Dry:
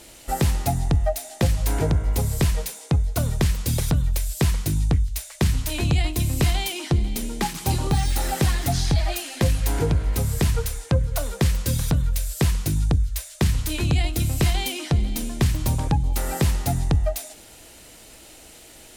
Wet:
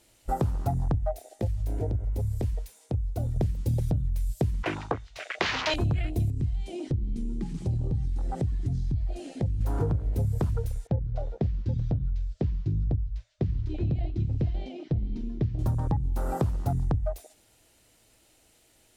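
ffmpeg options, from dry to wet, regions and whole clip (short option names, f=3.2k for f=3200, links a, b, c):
-filter_complex "[0:a]asettb=1/sr,asplit=3[a][b][c];[a]atrim=end=1.274[d];[b]atrim=start=1.27:end=3.36,asetpts=PTS-STARTPTS,afade=t=in:d=0.004:c=qsin,afade=t=out:st=2.086:d=0.004:c=qsin,equalizer=f=150:t=o:w=0.37:g=-14,acompressor=threshold=-35dB:ratio=1.5:attack=3.2:release=140:knee=1:detection=peak[e];[c]atrim=start=3.356[f];[d][e]acrossfade=d=0.004:c1=hsin:c2=qsin[g];[g][f]acrossfade=d=0.004:c1=qsin:c2=hsin,asettb=1/sr,asplit=3[h][i][j];[h]atrim=end=4.634[k];[i]atrim=start=4.63:end=5.74,asetpts=PTS-STARTPTS,afade=t=in:d=0.004:c=qsin,afade=t=out:st=1.106:d=0.004:c=qsin,acrossover=split=380 6300:gain=0.0794 1 0.0794[l][m][n];[l][m][n]amix=inputs=3:normalize=0,asplit=2[o][p];[p]highpass=f=720:p=1,volume=26dB,asoftclip=type=tanh:threshold=-9dB[q];[o][q]amix=inputs=2:normalize=0,lowpass=f=1.8k:p=1,volume=-6dB[r];[j]atrim=start=5.736[s];[k][r]acrossfade=d=0.004:c1=hsin:c2=qsin[t];[t][s]acrossfade=d=0.004:c1=qsin:c2=hsin,asettb=1/sr,asplit=3[u][v][w];[u]atrim=end=6.304[x];[v]atrim=start=6.3:end=9.61,asetpts=PTS-STARTPTS,afade=t=in:d=0.004:c=qsin,afade=t=out:st=3.306:d=0.004:c=qsin,lowpass=f=9.1k:w=0.5412,lowpass=f=9.1k:w=1.3066,lowshelf=f=300:g=9,acompressor=threshold=-29dB:ratio=3:attack=3.2:release=140:knee=1:detection=peak[y];[w]atrim=start=9.606[z];[x][y]acrossfade=d=0.004:c1=hsin:c2=qsin[aa];[aa][z]acrossfade=d=0.004:c1=qsin:c2=hsin,asettb=1/sr,asplit=3[ab][ac][ad];[ab]atrim=end=10.874[ae];[ac]atrim=start=10.87:end=15.59,asetpts=PTS-STARTPTS,afade=t=in:d=0.004:c=qsin,afade=t=out:st=4.716:d=0.004:c=qsin,lowpass=f=5.4k:w=0.5412,lowpass=f=5.4k:w=1.3066,highshelf=f=4.1k:g=-6,flanger=delay=0.6:depth=8.5:regen=-68:speed=1.4:shape=triangular[af];[ad]atrim=start=15.586[ag];[ae][af]acrossfade=d=0.004:c1=hsin:c2=qsin[ah];[ah][ag]acrossfade=d=0.004:c1=qsin:c2=hsin,afwtdn=0.0316,equalizer=f=110:t=o:w=0.31:g=7.5,acompressor=threshold=-23dB:ratio=6"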